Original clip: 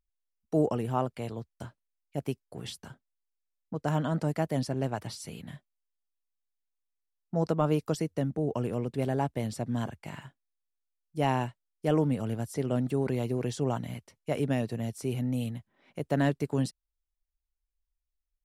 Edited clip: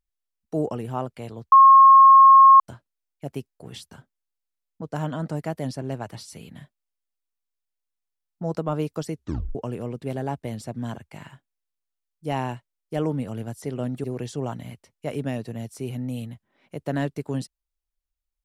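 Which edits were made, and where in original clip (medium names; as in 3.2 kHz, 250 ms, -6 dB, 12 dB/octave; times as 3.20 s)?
1.52 s: add tone 1.08 kHz -7.5 dBFS 1.08 s
8.05 s: tape stop 0.42 s
12.96–13.28 s: delete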